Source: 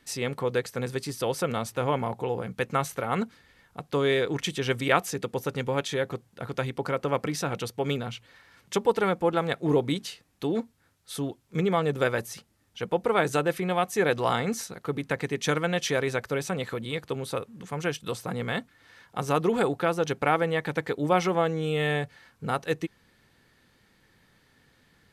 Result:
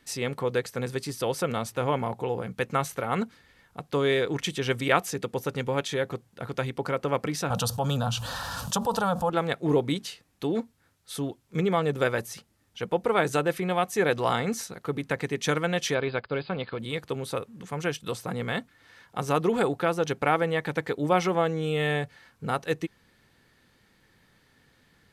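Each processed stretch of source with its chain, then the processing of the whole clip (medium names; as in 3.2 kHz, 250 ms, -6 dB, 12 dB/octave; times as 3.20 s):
7.50–9.30 s: static phaser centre 880 Hz, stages 4 + level flattener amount 70%
15.94–16.79 s: companding laws mixed up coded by A + brick-wall FIR low-pass 5 kHz + band-stop 1.9 kHz, Q 9.1
whole clip: none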